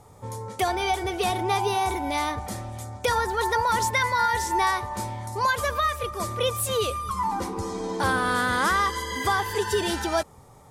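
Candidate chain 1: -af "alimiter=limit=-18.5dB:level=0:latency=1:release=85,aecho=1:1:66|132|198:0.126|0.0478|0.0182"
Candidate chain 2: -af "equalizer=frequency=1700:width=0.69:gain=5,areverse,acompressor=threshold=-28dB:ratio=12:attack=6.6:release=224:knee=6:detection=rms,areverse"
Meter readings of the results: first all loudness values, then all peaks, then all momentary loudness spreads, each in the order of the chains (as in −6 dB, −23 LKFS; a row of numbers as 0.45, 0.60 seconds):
−28.0, −33.0 LKFS; −17.5, −21.0 dBFS; 6, 4 LU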